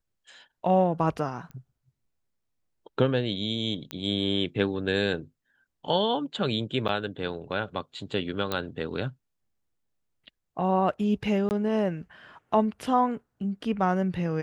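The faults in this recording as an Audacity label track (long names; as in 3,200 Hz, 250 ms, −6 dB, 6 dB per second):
1.510000	1.510000	click −31 dBFS
3.910000	3.910000	click −18 dBFS
6.880000	6.890000	drop-out 8.5 ms
8.520000	8.520000	click −14 dBFS
11.490000	11.510000	drop-out 19 ms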